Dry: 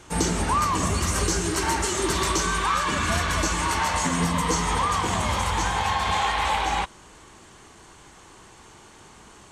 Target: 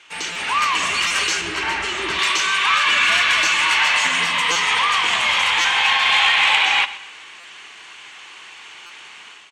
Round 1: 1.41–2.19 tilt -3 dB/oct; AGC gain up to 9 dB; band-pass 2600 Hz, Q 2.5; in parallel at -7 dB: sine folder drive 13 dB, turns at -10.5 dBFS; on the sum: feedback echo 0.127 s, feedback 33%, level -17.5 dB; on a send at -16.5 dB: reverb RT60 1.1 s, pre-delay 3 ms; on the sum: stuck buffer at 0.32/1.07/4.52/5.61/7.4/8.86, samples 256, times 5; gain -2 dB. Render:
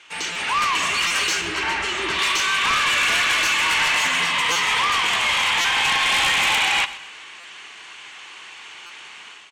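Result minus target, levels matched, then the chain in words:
sine folder: distortion +15 dB
1.41–2.19 tilt -3 dB/oct; AGC gain up to 9 dB; band-pass 2600 Hz, Q 2.5; in parallel at -7 dB: sine folder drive 13 dB, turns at -2.5 dBFS; on the sum: feedback echo 0.127 s, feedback 33%, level -17.5 dB; on a send at -16.5 dB: reverb RT60 1.1 s, pre-delay 3 ms; on the sum: stuck buffer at 0.32/1.07/4.52/5.61/7.4/8.86, samples 256, times 5; gain -2 dB

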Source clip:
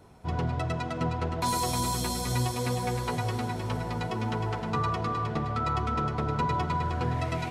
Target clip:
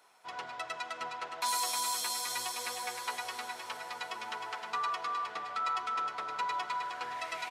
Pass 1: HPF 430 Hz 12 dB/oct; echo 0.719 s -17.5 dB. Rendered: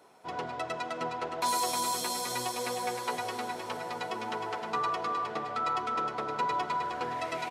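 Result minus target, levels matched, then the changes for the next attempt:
500 Hz band +8.0 dB
change: HPF 1100 Hz 12 dB/oct

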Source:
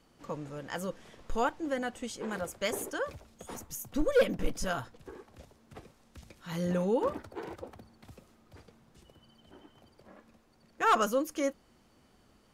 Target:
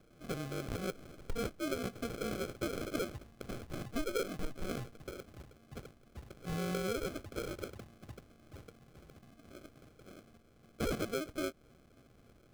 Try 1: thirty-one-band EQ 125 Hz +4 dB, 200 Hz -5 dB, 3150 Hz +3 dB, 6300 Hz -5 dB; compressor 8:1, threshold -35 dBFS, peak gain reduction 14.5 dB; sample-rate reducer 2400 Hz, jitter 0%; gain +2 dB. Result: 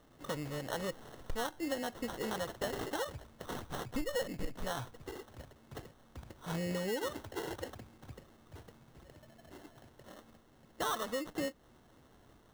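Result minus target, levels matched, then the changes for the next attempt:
sample-rate reducer: distortion -11 dB
change: sample-rate reducer 930 Hz, jitter 0%

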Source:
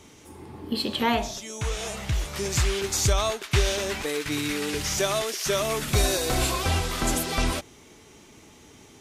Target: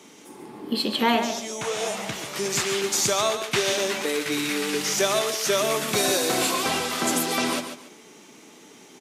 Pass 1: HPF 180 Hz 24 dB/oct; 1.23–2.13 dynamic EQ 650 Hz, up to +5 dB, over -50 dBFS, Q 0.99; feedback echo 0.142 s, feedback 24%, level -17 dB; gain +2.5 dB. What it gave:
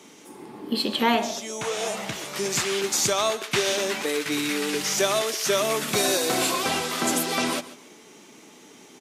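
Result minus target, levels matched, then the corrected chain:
echo-to-direct -8 dB
HPF 180 Hz 24 dB/oct; 1.23–2.13 dynamic EQ 650 Hz, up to +5 dB, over -50 dBFS, Q 0.99; feedback echo 0.142 s, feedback 24%, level -9 dB; gain +2.5 dB

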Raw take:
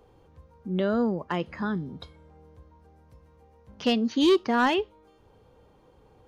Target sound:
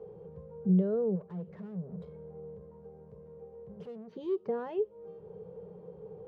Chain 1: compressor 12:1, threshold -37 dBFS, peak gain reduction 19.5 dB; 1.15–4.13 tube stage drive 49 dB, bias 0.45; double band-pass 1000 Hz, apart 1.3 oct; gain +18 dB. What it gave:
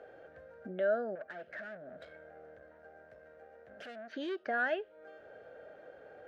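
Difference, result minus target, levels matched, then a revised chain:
250 Hz band -9.5 dB
compressor 12:1, threshold -37 dBFS, peak gain reduction 19.5 dB; 1.15–4.13 tube stage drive 49 dB, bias 0.45; double band-pass 280 Hz, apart 1.3 oct; gain +18 dB

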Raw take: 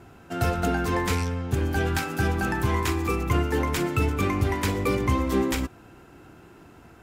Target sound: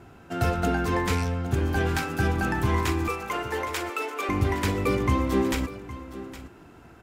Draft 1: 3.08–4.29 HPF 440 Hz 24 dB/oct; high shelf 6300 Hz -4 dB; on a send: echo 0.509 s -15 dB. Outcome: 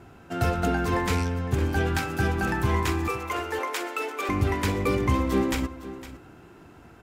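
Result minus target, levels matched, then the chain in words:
echo 0.305 s early
3.08–4.29 HPF 440 Hz 24 dB/oct; high shelf 6300 Hz -4 dB; on a send: echo 0.814 s -15 dB

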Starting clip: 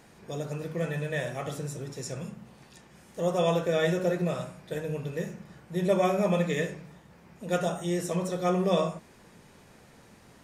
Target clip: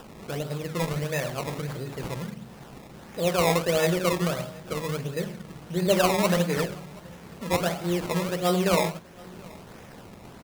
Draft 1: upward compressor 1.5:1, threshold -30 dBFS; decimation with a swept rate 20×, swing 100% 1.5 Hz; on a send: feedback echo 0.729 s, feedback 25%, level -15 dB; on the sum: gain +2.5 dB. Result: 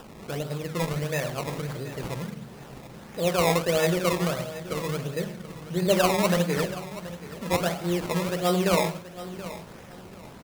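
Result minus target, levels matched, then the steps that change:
echo-to-direct +10 dB
change: feedback echo 0.729 s, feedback 25%, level -25 dB

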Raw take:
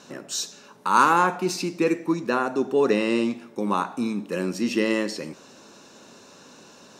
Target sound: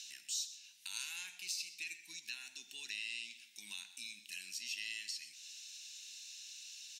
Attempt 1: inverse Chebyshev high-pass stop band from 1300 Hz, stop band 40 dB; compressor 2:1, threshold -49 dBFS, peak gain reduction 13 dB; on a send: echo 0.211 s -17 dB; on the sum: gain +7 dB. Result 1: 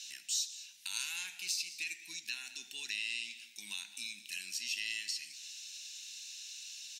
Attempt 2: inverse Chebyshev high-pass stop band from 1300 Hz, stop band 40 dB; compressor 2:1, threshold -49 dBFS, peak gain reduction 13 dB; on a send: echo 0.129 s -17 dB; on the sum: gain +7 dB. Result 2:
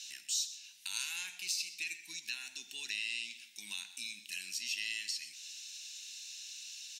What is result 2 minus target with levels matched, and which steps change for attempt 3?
compressor: peak gain reduction -5 dB
change: compressor 2:1, threshold -58.5 dBFS, peak gain reduction 17.5 dB

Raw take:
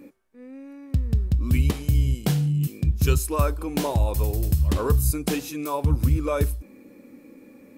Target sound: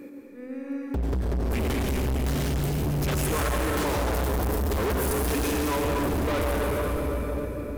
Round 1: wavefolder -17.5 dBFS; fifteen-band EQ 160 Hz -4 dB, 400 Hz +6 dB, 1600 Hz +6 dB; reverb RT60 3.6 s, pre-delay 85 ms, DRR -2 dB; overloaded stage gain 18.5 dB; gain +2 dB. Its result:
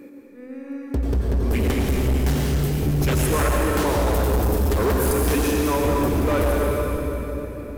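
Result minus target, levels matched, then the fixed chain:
overloaded stage: distortion -5 dB
wavefolder -17.5 dBFS; fifteen-band EQ 160 Hz -4 dB, 400 Hz +6 dB, 1600 Hz +6 dB; reverb RT60 3.6 s, pre-delay 85 ms, DRR -2 dB; overloaded stage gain 26 dB; gain +2 dB

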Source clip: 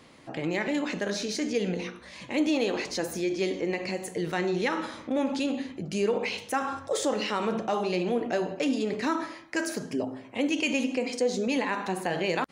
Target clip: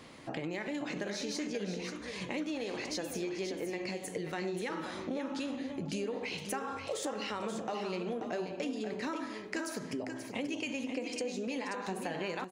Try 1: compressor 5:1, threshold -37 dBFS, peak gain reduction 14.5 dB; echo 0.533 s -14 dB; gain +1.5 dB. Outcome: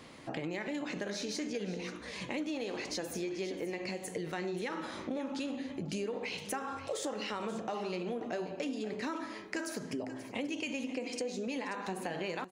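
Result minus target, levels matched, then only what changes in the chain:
echo-to-direct -6 dB
change: echo 0.533 s -8 dB

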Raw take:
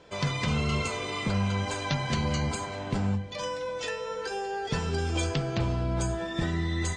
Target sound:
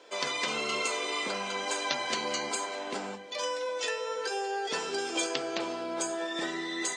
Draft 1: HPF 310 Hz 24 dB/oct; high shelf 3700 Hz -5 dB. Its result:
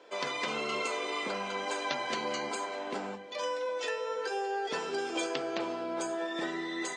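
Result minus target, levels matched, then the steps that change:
8000 Hz band -6.0 dB
change: high shelf 3700 Hz +5.5 dB

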